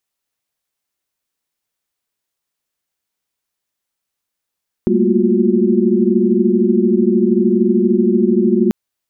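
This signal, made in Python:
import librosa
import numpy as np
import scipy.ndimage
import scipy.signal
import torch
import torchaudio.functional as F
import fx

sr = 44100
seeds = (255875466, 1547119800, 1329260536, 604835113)

y = fx.chord(sr, length_s=3.84, notes=(55, 57, 58, 65, 66), wave='sine', level_db=-17.0)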